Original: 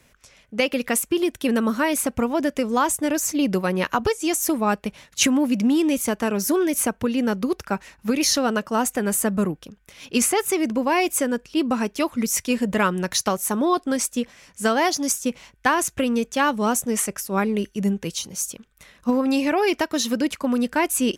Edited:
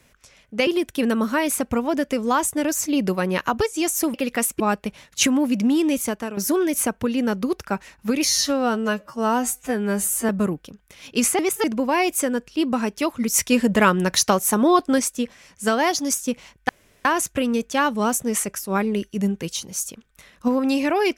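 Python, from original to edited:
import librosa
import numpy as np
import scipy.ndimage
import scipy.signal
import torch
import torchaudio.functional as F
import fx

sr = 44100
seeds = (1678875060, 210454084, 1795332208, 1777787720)

y = fx.edit(x, sr, fx.move(start_s=0.67, length_s=0.46, to_s=4.6),
    fx.fade_out_to(start_s=6.0, length_s=0.37, floor_db=-11.0),
    fx.stretch_span(start_s=8.25, length_s=1.02, factor=2.0),
    fx.reverse_span(start_s=10.37, length_s=0.25),
    fx.clip_gain(start_s=12.32, length_s=1.66, db=4.0),
    fx.insert_room_tone(at_s=15.67, length_s=0.36), tone=tone)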